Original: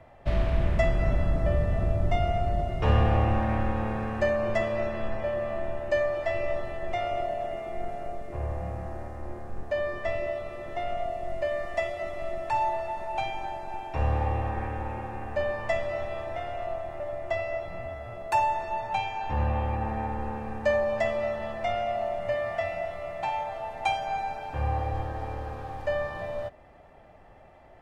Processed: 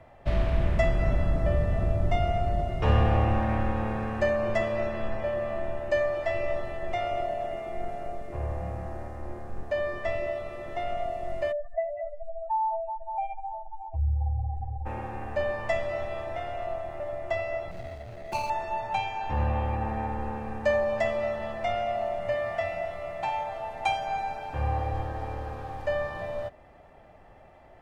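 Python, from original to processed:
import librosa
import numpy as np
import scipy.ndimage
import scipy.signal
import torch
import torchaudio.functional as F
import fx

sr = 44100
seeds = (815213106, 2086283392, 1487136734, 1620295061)

y = fx.spec_expand(x, sr, power=3.3, at=(11.51, 14.85), fade=0.02)
y = fx.median_filter(y, sr, points=41, at=(17.71, 18.5))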